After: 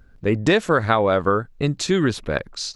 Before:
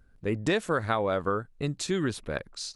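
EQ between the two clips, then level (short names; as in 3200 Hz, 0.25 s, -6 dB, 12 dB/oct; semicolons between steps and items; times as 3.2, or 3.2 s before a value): bell 9400 Hz -10.5 dB 0.41 oct; +9.0 dB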